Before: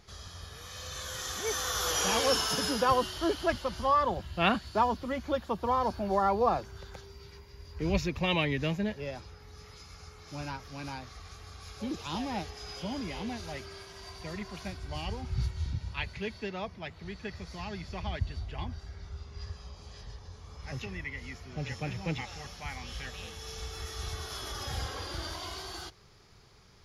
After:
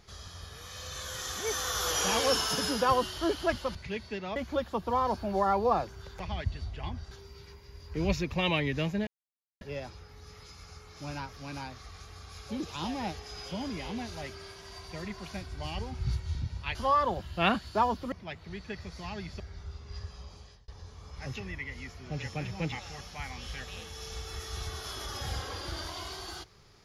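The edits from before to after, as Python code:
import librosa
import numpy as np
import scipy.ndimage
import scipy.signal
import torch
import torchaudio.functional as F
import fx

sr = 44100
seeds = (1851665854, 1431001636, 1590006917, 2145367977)

y = fx.edit(x, sr, fx.swap(start_s=3.75, length_s=1.37, other_s=16.06, other_length_s=0.61),
    fx.insert_silence(at_s=8.92, length_s=0.54),
    fx.move(start_s=17.95, length_s=0.91, to_s=6.96),
    fx.fade_out_span(start_s=19.78, length_s=0.36), tone=tone)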